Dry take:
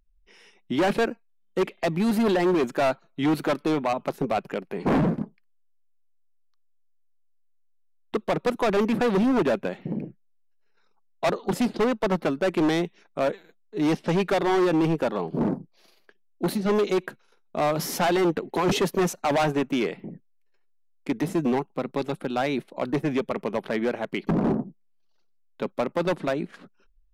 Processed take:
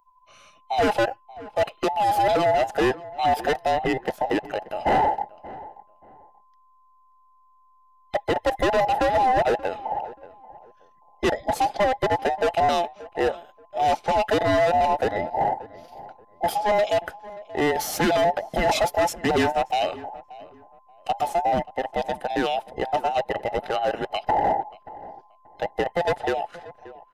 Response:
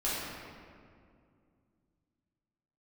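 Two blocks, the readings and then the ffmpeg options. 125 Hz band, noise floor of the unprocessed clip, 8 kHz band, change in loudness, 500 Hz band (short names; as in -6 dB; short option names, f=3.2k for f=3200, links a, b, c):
-5.0 dB, -63 dBFS, +1.5 dB, +2.0 dB, +2.0 dB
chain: -filter_complex "[0:a]afftfilt=real='real(if(between(b,1,1008),(2*floor((b-1)/48)+1)*48-b,b),0)':imag='imag(if(between(b,1,1008),(2*floor((b-1)/48)+1)*48-b,b),0)*if(between(b,1,1008),-1,1)':win_size=2048:overlap=0.75,asplit=2[a][b];[b]adelay=581,lowpass=f=1.5k:p=1,volume=-17.5dB,asplit=2[c][d];[d]adelay=581,lowpass=f=1.5k:p=1,volume=0.27[e];[a][c][e]amix=inputs=3:normalize=0,volume=1.5dB"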